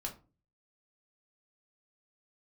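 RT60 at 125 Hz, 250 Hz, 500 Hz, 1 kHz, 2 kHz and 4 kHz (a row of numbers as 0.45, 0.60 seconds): 0.60, 0.50, 0.40, 0.30, 0.25, 0.20 seconds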